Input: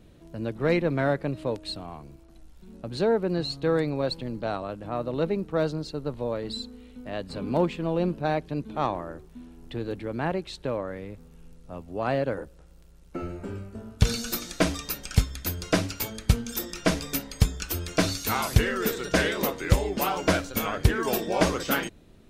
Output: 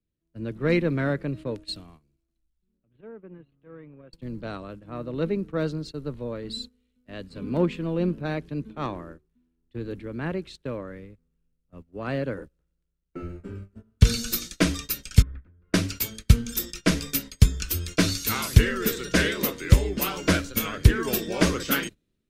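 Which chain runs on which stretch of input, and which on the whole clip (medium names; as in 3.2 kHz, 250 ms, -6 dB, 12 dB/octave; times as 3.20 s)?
2.78–4.13 s: steep low-pass 3.3 kHz 72 dB/octave + compression 5:1, threshold -34 dBFS + transformer saturation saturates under 300 Hz
15.22–15.74 s: low-pass 1.7 kHz 24 dB/octave + compression 4:1, threshold -39 dBFS
whole clip: gate -37 dBFS, range -17 dB; peaking EQ 770 Hz -11.5 dB 0.99 oct; three bands expanded up and down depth 40%; trim +2 dB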